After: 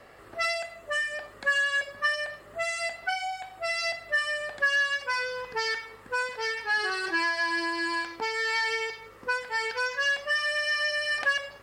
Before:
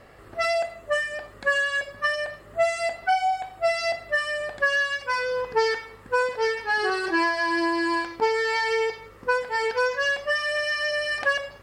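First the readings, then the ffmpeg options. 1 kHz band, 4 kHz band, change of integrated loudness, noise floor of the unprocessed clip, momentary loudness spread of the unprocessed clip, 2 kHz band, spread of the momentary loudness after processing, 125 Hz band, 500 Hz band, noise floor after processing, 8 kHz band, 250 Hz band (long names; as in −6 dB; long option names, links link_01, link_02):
−6.5 dB, 0.0 dB, −3.0 dB, −48 dBFS, 4 LU, −1.0 dB, 7 LU, can't be measured, −10.0 dB, −50 dBFS, 0.0 dB, −9.5 dB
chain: -filter_complex "[0:a]lowshelf=frequency=230:gain=-8.5,acrossover=split=230|1200[link_01][link_02][link_03];[link_02]acompressor=threshold=-37dB:ratio=6[link_04];[link_01][link_04][link_03]amix=inputs=3:normalize=0"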